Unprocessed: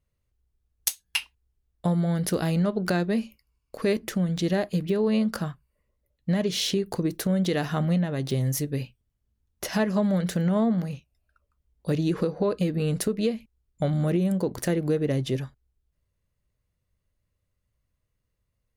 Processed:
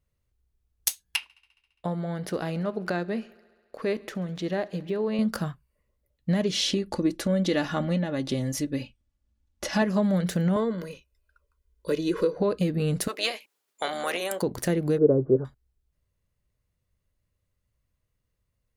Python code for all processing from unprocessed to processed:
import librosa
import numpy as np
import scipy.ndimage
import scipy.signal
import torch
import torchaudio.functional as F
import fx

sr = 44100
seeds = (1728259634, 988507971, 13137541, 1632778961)

y = fx.chain(x, sr, fx.lowpass(hz=2200.0, slope=6),
    fx.low_shelf(hz=230.0, db=-11.5),
    fx.echo_thinned(ms=68, feedback_pct=77, hz=150.0, wet_db=-23.5), at=(1.16, 5.19))
y = fx.chain(y, sr, fx.lowpass(hz=8000.0, slope=12),
    fx.comb(ms=3.5, depth=0.57), at=(6.51, 9.82))
y = fx.chain(y, sr, fx.peak_eq(hz=880.0, db=11.0, octaves=1.2),
    fx.fixed_phaser(hz=320.0, stages=4),
    fx.comb(ms=2.0, depth=0.56), at=(10.56, 12.37))
y = fx.spec_clip(y, sr, under_db=20, at=(13.07, 14.41), fade=0.02)
y = fx.highpass(y, sr, hz=620.0, slope=12, at=(13.07, 14.41), fade=0.02)
y = fx.chain(y, sr, fx.cheby_ripple(hz=1500.0, ripple_db=3),
    fx.peak_eq(hz=440.0, db=11.0, octaves=1.0), at=(14.98, 15.45))